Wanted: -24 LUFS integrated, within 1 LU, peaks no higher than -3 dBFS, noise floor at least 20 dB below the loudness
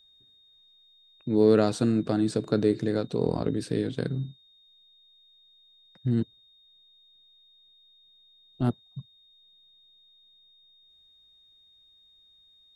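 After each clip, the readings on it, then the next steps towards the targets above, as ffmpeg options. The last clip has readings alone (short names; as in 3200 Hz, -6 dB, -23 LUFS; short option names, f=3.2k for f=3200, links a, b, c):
steady tone 3700 Hz; tone level -57 dBFS; loudness -27.0 LUFS; peak -8.5 dBFS; loudness target -24.0 LUFS
-> -af "bandreject=f=3.7k:w=30"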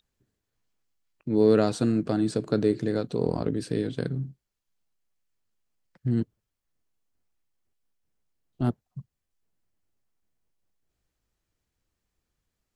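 steady tone none; loudness -26.5 LUFS; peak -8.5 dBFS; loudness target -24.0 LUFS
-> -af "volume=2.5dB"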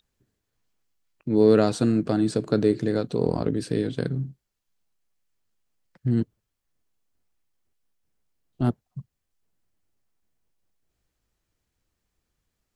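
loudness -24.0 LUFS; peak -6.0 dBFS; noise floor -80 dBFS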